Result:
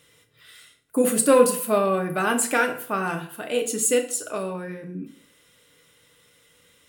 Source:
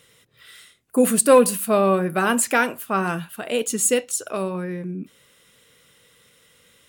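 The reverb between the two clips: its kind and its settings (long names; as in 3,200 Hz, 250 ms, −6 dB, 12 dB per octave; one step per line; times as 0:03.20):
feedback delay network reverb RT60 0.54 s, low-frequency decay 1×, high-frequency decay 0.8×, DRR 4 dB
level −3.5 dB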